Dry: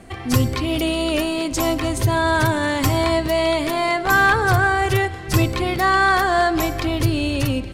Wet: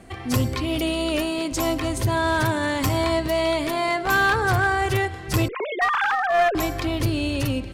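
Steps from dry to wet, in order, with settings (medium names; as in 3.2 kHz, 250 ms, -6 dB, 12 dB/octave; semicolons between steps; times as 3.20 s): 5.48–6.55 s: formants replaced by sine waves; one-sided clip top -15 dBFS; trim -3 dB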